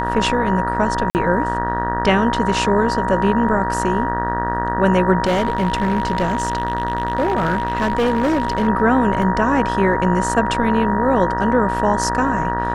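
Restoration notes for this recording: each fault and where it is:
buzz 60 Hz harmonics 32 -24 dBFS
whine 950 Hz -21 dBFS
1.10–1.15 s: dropout 49 ms
5.24–8.68 s: clipped -13.5 dBFS
9.22 s: dropout 2.6 ms

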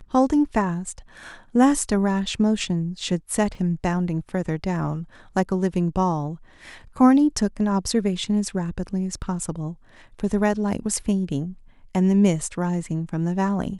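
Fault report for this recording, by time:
3.55 s: dropout 2.8 ms

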